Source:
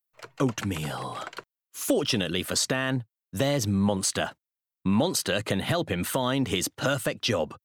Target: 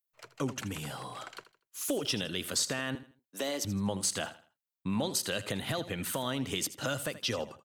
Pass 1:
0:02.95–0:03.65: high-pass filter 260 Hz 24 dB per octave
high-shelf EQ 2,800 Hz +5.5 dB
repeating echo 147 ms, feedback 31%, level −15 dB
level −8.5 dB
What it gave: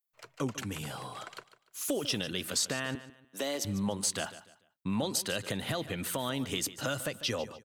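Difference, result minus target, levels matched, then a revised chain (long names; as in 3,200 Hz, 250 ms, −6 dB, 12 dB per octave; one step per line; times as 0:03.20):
echo 67 ms late
0:02.95–0:03.65: high-pass filter 260 Hz 24 dB per octave
high-shelf EQ 2,800 Hz +5.5 dB
repeating echo 80 ms, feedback 31%, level −15 dB
level −8.5 dB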